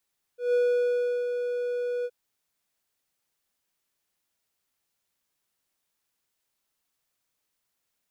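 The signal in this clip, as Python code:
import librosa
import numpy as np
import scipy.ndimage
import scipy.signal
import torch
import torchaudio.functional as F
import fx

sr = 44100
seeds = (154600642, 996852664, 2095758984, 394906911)

y = fx.adsr_tone(sr, wave='triangle', hz=488.0, attack_ms=154.0, decay_ms=724.0, sustain_db=-7.0, held_s=1.67, release_ms=49.0, level_db=-17.5)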